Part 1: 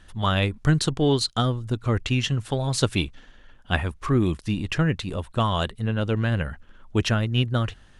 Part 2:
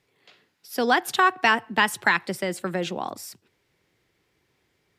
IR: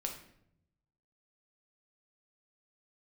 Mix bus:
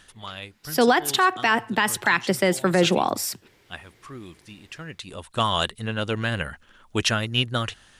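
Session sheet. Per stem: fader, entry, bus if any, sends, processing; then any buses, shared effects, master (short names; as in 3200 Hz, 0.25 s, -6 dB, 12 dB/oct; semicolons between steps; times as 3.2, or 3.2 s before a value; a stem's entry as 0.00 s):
+2.0 dB, 0.00 s, no send, tilt +2.5 dB/oct; auto duck -16 dB, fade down 0.25 s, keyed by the second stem
+2.5 dB, 0.00 s, no send, AGC gain up to 9 dB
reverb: off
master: limiter -8.5 dBFS, peak gain reduction 9.5 dB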